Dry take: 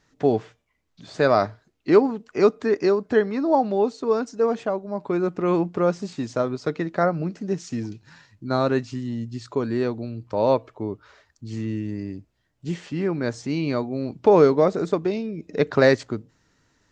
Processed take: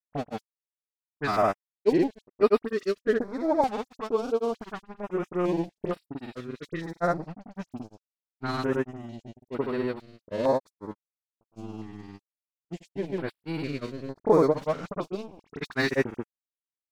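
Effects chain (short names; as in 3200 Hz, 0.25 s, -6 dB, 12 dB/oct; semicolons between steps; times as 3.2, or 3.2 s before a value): bell 78 Hz -12.5 dB 0.87 oct; crossover distortion -31.5 dBFS; dispersion highs, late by 43 ms, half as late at 2900 Hz; grains 0.1 s, grains 20/s, spray 0.1 s, pitch spread up and down by 0 st; stepped notch 2.2 Hz 370–6400 Hz; gain -1.5 dB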